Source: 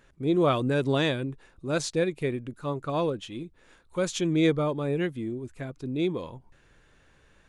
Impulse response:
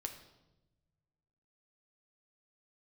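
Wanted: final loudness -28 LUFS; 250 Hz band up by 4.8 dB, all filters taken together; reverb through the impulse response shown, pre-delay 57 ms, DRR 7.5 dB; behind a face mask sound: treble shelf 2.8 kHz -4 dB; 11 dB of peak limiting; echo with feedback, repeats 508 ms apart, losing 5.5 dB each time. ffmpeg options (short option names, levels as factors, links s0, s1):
-filter_complex "[0:a]equalizer=f=250:t=o:g=7,alimiter=limit=0.106:level=0:latency=1,aecho=1:1:508|1016|1524|2032|2540|3048|3556:0.531|0.281|0.149|0.079|0.0419|0.0222|0.0118,asplit=2[s0][s1];[1:a]atrim=start_sample=2205,adelay=57[s2];[s1][s2]afir=irnorm=-1:irlink=0,volume=0.531[s3];[s0][s3]amix=inputs=2:normalize=0,highshelf=f=2800:g=-4,volume=0.944"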